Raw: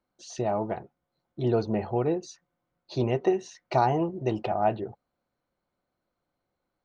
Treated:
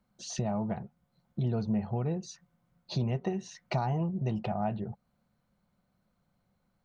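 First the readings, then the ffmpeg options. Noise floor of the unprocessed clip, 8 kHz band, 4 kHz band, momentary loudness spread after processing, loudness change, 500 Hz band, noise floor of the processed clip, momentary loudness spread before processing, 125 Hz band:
-83 dBFS, n/a, -0.5 dB, 11 LU, -5.0 dB, -10.0 dB, -76 dBFS, 12 LU, +1.0 dB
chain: -af "lowshelf=f=250:t=q:w=3:g=6.5,acompressor=threshold=-37dB:ratio=2.5,volume=3.5dB"

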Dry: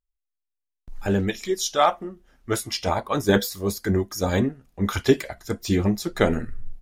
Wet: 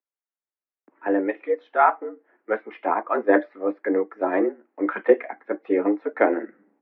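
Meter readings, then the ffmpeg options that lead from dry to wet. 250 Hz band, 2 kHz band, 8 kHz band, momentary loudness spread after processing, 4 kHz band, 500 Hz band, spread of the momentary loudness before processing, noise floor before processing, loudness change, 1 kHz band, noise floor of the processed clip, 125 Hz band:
-1.0 dB, +1.5 dB, under -40 dB, 10 LU, under -25 dB, +2.5 dB, 10 LU, -83 dBFS, +0.5 dB, +3.0 dB, under -85 dBFS, under -25 dB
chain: -af "highpass=f=170:t=q:w=0.5412,highpass=f=170:t=q:w=1.307,lowpass=f=2k:t=q:w=0.5176,lowpass=f=2k:t=q:w=0.7071,lowpass=f=2k:t=q:w=1.932,afreqshift=100,volume=1.5dB"

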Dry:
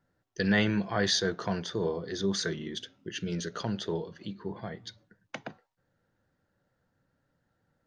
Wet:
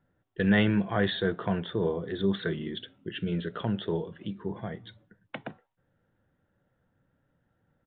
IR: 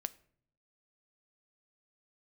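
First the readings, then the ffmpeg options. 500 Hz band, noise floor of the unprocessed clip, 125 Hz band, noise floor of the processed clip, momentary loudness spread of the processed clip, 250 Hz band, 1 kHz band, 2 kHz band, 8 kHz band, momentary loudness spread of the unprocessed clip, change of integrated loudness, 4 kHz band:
+2.0 dB, -78 dBFS, +3.5 dB, -76 dBFS, 18 LU, +3.0 dB, +1.0 dB, 0.0 dB, under -40 dB, 17 LU, +1.5 dB, -4.0 dB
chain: -af "lowshelf=f=450:g=4,aresample=8000,aresample=44100"

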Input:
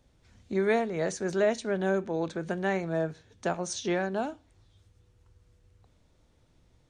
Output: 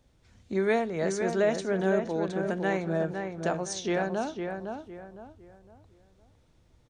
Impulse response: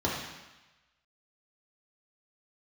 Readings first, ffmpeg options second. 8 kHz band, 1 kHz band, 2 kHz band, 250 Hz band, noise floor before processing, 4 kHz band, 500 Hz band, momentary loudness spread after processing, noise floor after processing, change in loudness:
0.0 dB, +1.0 dB, +0.5 dB, +1.5 dB, -66 dBFS, +0.5 dB, +1.0 dB, 13 LU, -64 dBFS, +1.0 dB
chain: -filter_complex "[0:a]asplit=2[a][b];[b]adelay=509,lowpass=f=2.1k:p=1,volume=-5.5dB,asplit=2[c][d];[d]adelay=509,lowpass=f=2.1k:p=1,volume=0.34,asplit=2[e][f];[f]adelay=509,lowpass=f=2.1k:p=1,volume=0.34,asplit=2[g][h];[h]adelay=509,lowpass=f=2.1k:p=1,volume=0.34[i];[a][c][e][g][i]amix=inputs=5:normalize=0"

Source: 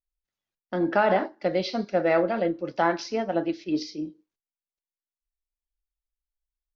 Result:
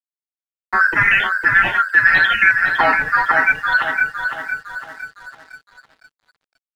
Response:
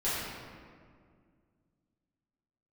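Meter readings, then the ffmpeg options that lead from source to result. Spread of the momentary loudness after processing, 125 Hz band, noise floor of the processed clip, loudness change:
16 LU, +3.0 dB, under -85 dBFS, +11.5 dB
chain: -filter_complex "[0:a]afftfilt=real='real(if(lt(b,272),68*(eq(floor(b/68),0)*2+eq(floor(b/68),1)*0+eq(floor(b/68),2)*3+eq(floor(b/68),3)*1)+mod(b,68),b),0)':imag='imag(if(lt(b,272),68*(eq(floor(b/68),0)*2+eq(floor(b/68),1)*0+eq(floor(b/68),2)*3+eq(floor(b/68),3)*1)+mod(b,68),b),0)':win_size=2048:overlap=0.75,afftdn=nr=33:nf=-42,aemphasis=mode=reproduction:type=50fm,agate=range=-23dB:threshold=-53dB:ratio=16:detection=peak,lowshelf=f=260:g=6.5,apsyclip=17dB,asplit=2[a][b];[b]asoftclip=type=hard:threshold=-7.5dB,volume=-5dB[c];[a][c]amix=inputs=2:normalize=0,acrusher=samples=9:mix=1:aa=0.000001:lfo=1:lforange=9:lforate=0.41,highpass=f=180:t=q:w=0.5412,highpass=f=180:t=q:w=1.307,lowpass=f=3.5k:t=q:w=0.5176,lowpass=f=3.5k:t=q:w=0.7071,lowpass=f=3.5k:t=q:w=1.932,afreqshift=-280,flanger=delay=5.2:depth=2.5:regen=-4:speed=1.2:shape=sinusoidal,asplit=2[d][e];[e]adelay=508,lowpass=f=2.5k:p=1,volume=-4.5dB,asplit=2[f][g];[g]adelay=508,lowpass=f=2.5k:p=1,volume=0.54,asplit=2[h][i];[i]adelay=508,lowpass=f=2.5k:p=1,volume=0.54,asplit=2[j][k];[k]adelay=508,lowpass=f=2.5k:p=1,volume=0.54,asplit=2[l][m];[m]adelay=508,lowpass=f=2.5k:p=1,volume=0.54,asplit=2[n][o];[o]adelay=508,lowpass=f=2.5k:p=1,volume=0.54,asplit=2[p][q];[q]adelay=508,lowpass=f=2.5k:p=1,volume=0.54[r];[f][h][j][l][n][p][r]amix=inputs=7:normalize=0[s];[d][s]amix=inputs=2:normalize=0,aeval=exprs='sgn(val(0))*max(abs(val(0))-0.0106,0)':c=same,volume=-5.5dB"

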